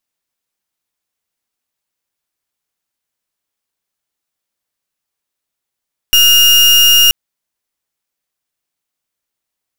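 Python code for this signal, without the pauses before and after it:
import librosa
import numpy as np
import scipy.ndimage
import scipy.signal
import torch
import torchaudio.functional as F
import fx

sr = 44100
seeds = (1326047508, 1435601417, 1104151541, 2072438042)

y = fx.pulse(sr, length_s=0.98, hz=2840.0, level_db=-7.5, duty_pct=36)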